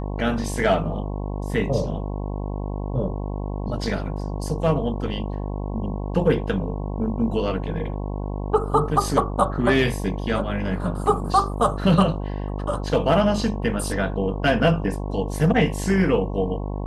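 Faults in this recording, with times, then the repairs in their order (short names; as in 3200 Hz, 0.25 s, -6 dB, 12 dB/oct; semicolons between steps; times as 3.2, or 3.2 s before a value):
buzz 50 Hz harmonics 22 -28 dBFS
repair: de-hum 50 Hz, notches 22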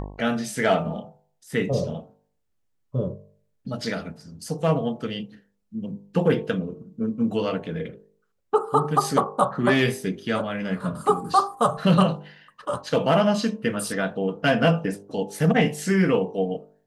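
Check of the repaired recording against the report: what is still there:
none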